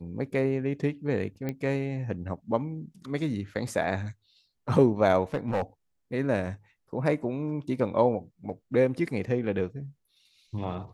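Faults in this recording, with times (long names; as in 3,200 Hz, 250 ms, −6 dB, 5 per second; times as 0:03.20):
0:01.49: click −19 dBFS
0:05.34–0:05.62: clipping −22.5 dBFS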